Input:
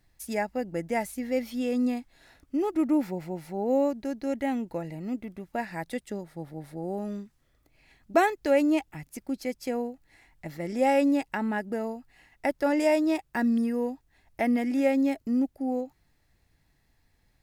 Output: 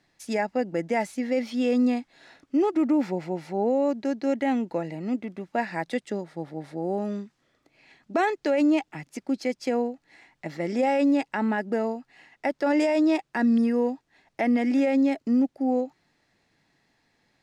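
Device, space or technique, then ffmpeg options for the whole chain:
DJ mixer with the lows and highs turned down: -filter_complex "[0:a]acrossover=split=150 7600:gain=0.0708 1 0.0794[a][b][c];[a][b][c]amix=inputs=3:normalize=0,alimiter=limit=-21dB:level=0:latency=1:release=32,volume=5.5dB"

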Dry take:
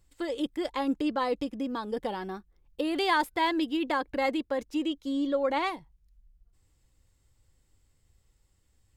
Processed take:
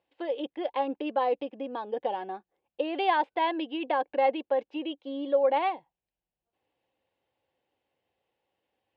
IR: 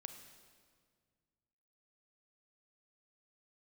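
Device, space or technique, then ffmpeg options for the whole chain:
phone earpiece: -af "highpass=380,equalizer=f=540:t=q:w=4:g=5,equalizer=f=770:t=q:w=4:g=7,equalizer=f=1.3k:t=q:w=4:g=-9,equalizer=f=2k:t=q:w=4:g=-5,equalizer=f=2.8k:t=q:w=4:g=3,lowpass=f=3k:w=0.5412,lowpass=f=3k:w=1.3066"

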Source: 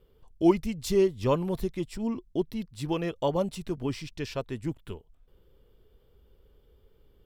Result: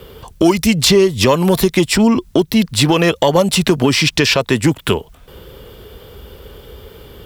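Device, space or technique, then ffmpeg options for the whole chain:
mastering chain: -filter_complex "[0:a]highpass=58,equalizer=f=350:t=o:w=0.77:g=-2,acrossover=split=150|4300[a][b][c];[a]acompressor=threshold=-50dB:ratio=4[d];[b]acompressor=threshold=-33dB:ratio=4[e];[c]acompressor=threshold=-51dB:ratio=4[f];[d][e][f]amix=inputs=3:normalize=0,acompressor=threshold=-38dB:ratio=2,asoftclip=type=tanh:threshold=-26.5dB,tiltshelf=f=640:g=-3,alimiter=level_in=30.5dB:limit=-1dB:release=50:level=0:latency=1,volume=-1dB"

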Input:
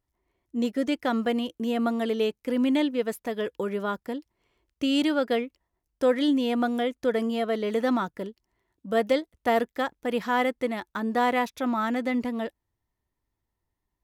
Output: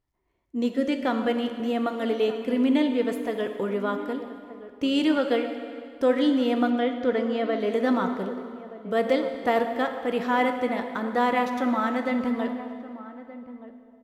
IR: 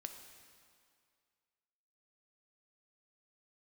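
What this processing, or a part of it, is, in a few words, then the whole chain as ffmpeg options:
swimming-pool hall: -filter_complex "[1:a]atrim=start_sample=2205[a];[0:a][a]afir=irnorm=-1:irlink=0,highshelf=f=5.5k:g=-8,asettb=1/sr,asplit=3[b][c][d];[b]atrim=end=6.704[e];[c]atrim=start=6.7:end=7.6,asetpts=PTS-STARTPTS,afade=t=in:d=0.004:c=qsin,afade=t=out:st=0.896:d=0.004:c=qsin,lowpass=5.1k[f];[d]atrim=start=7.596[g];[e][f]acrossfade=d=0.004:c1=hsin:c2=qsin[h];[h][g]acrossfade=d=0.004:c1=qsin:c2=hsin,asplit=2[i][j];[j]adelay=1224,volume=-15dB,highshelf=f=4k:g=-27.6[k];[i][k]amix=inputs=2:normalize=0,volume=5.5dB"

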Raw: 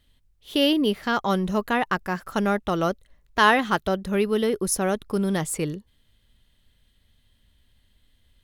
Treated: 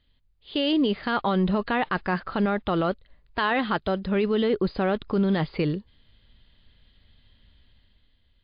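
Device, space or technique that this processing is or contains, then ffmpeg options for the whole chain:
low-bitrate web radio: -af "dynaudnorm=f=110:g=13:m=8.5dB,alimiter=limit=-11.5dB:level=0:latency=1:release=23,volume=-3dB" -ar 11025 -c:a libmp3lame -b:a 40k

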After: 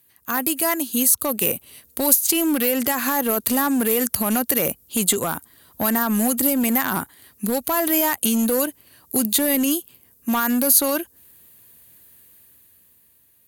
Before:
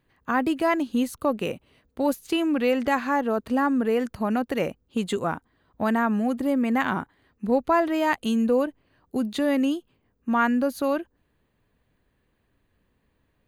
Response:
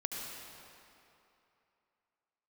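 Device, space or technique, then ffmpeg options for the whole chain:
FM broadcast chain: -filter_complex "[0:a]highpass=f=60:w=0.5412,highpass=f=60:w=1.3066,dynaudnorm=f=210:g=13:m=11dB,acrossover=split=2100|7900[a][b][c];[a]acompressor=threshold=-14dB:ratio=4[d];[b]acompressor=threshold=-38dB:ratio=4[e];[c]acompressor=threshold=-48dB:ratio=4[f];[d][e][f]amix=inputs=3:normalize=0,aemphasis=mode=production:type=75fm,alimiter=limit=-11.5dB:level=0:latency=1:release=53,asoftclip=type=hard:threshold=-15dB,lowpass=f=15k:w=0.5412,lowpass=f=15k:w=1.3066,aemphasis=mode=production:type=75fm,volume=-1dB"

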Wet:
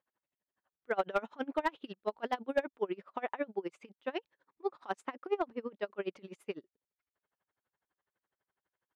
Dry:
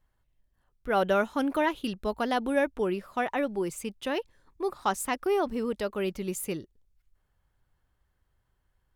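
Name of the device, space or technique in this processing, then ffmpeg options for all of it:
helicopter radio: -filter_complex "[0:a]highpass=320,lowpass=2.8k,aeval=exprs='val(0)*pow(10,-28*(0.5-0.5*cos(2*PI*12*n/s))/20)':c=same,asoftclip=type=hard:threshold=-20.5dB,asettb=1/sr,asplit=3[a][b][c];[a]atrim=end=5.004[d];[b]atrim=start=5:end=5.77,asetpts=PTS-STARTPTS,afade=t=in:d=0.004:c=qsin,afade=t=out:st=0.766:d=0.004:c=qsin,highshelf=f=4.5k:g=-7[e];[c]atrim=start=5.766[f];[d][e]acrossfade=d=0.004:c1=hsin:c2=qsin[g];[g][f]acrossfade=d=0.004:c1=qsin:c2=hsin"

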